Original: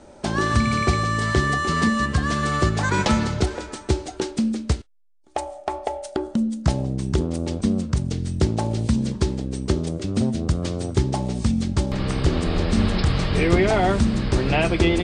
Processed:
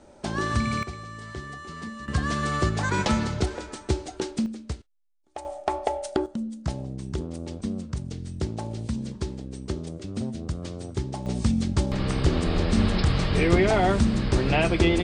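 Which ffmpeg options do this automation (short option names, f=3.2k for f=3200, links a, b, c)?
-af "asetnsamples=n=441:p=0,asendcmd='0.83 volume volume -17dB;2.08 volume volume -4dB;4.46 volume volume -11dB;5.45 volume volume 0.5dB;6.26 volume volume -9dB;11.26 volume volume -2dB',volume=-5.5dB"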